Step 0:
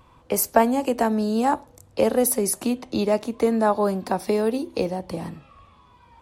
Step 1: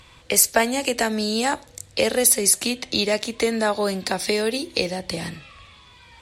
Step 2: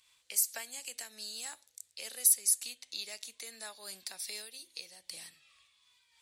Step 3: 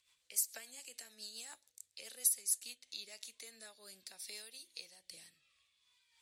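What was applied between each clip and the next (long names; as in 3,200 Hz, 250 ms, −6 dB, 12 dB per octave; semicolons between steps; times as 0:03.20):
graphic EQ with 10 bands 250 Hz −5 dB, 1,000 Hz −7 dB, 2,000 Hz +9 dB, 4,000 Hz +10 dB, 8,000 Hz +10 dB; in parallel at −1.5 dB: downward compressor, threshold −28 dBFS, peak gain reduction 15.5 dB; on the sum: level −1.5 dB
first-order pre-emphasis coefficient 0.97; amplitude modulation by smooth noise, depth 65%; level −6.5 dB
rotating-speaker cabinet horn 7 Hz, later 0.65 Hz, at 0:02.45; level −4 dB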